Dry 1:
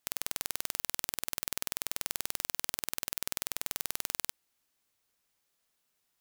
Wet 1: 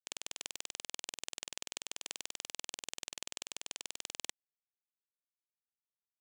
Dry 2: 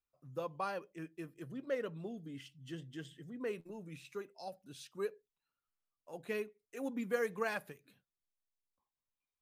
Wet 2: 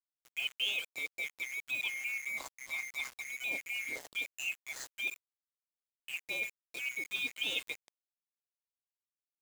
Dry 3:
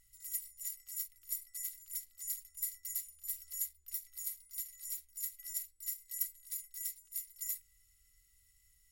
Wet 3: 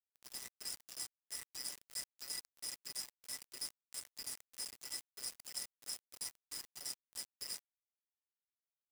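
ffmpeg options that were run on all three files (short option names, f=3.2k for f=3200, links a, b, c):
-af "afftfilt=real='real(if(lt(b,920),b+92*(1-2*mod(floor(b/92),2)),b),0)':imag='imag(if(lt(b,920),b+92*(1-2*mod(floor(b/92),2)),b),0)':win_size=2048:overlap=0.75,areverse,acompressor=threshold=-46dB:ratio=10,areverse,tremolo=f=130:d=0.333,highpass=220,equalizer=f=290:t=q:w=4:g=9,equalizer=f=1.4k:t=q:w=4:g=-9,equalizer=f=3.1k:t=q:w=4:g=7,equalizer=f=7.1k:t=q:w=4:g=5,lowpass=f=8.7k:w=0.5412,lowpass=f=8.7k:w=1.3066,aeval=exprs='val(0)*gte(abs(val(0)),0.00188)':c=same,volume=12.5dB"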